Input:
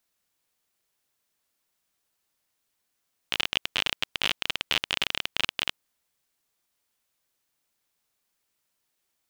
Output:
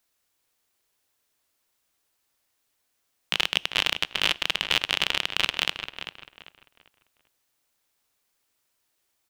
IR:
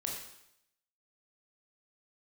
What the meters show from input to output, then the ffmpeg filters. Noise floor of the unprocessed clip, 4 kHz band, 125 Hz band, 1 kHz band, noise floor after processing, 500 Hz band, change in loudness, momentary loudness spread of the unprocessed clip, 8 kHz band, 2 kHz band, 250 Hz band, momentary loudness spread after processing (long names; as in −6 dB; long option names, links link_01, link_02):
−78 dBFS, +3.5 dB, +2.0 dB, +3.5 dB, −75 dBFS, +3.5 dB, +3.0 dB, 3 LU, +3.0 dB, +3.5 dB, +2.0 dB, 12 LU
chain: -filter_complex "[0:a]equalizer=frequency=180:width_type=o:width=0.21:gain=-14.5,asplit=2[link_01][link_02];[link_02]adelay=394,lowpass=frequency=3400:poles=1,volume=-8.5dB,asplit=2[link_03][link_04];[link_04]adelay=394,lowpass=frequency=3400:poles=1,volume=0.33,asplit=2[link_05][link_06];[link_06]adelay=394,lowpass=frequency=3400:poles=1,volume=0.33,asplit=2[link_07][link_08];[link_08]adelay=394,lowpass=frequency=3400:poles=1,volume=0.33[link_09];[link_01][link_03][link_05][link_07][link_09]amix=inputs=5:normalize=0,asplit=2[link_10][link_11];[1:a]atrim=start_sample=2205,asetrate=61740,aresample=44100[link_12];[link_11][link_12]afir=irnorm=-1:irlink=0,volume=-19dB[link_13];[link_10][link_13]amix=inputs=2:normalize=0,volume=2.5dB"